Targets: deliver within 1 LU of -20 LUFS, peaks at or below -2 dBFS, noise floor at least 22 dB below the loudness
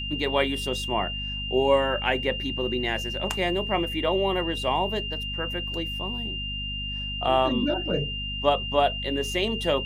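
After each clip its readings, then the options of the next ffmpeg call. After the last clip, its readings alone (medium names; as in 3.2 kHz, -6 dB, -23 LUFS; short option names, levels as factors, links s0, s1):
hum 50 Hz; highest harmonic 250 Hz; hum level -33 dBFS; steady tone 2.8 kHz; tone level -31 dBFS; loudness -26.0 LUFS; peak level -7.5 dBFS; loudness target -20.0 LUFS
-> -af "bandreject=f=50:t=h:w=4,bandreject=f=100:t=h:w=4,bandreject=f=150:t=h:w=4,bandreject=f=200:t=h:w=4,bandreject=f=250:t=h:w=4"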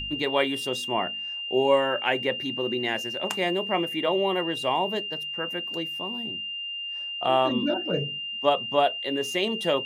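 hum not found; steady tone 2.8 kHz; tone level -31 dBFS
-> -af "bandreject=f=2800:w=30"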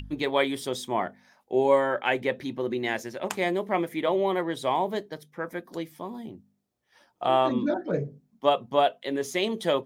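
steady tone not found; loudness -27.5 LUFS; peak level -7.5 dBFS; loudness target -20.0 LUFS
-> -af "volume=2.37,alimiter=limit=0.794:level=0:latency=1"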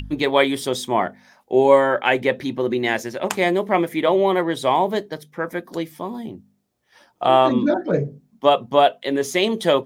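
loudness -20.0 LUFS; peak level -2.0 dBFS; noise floor -66 dBFS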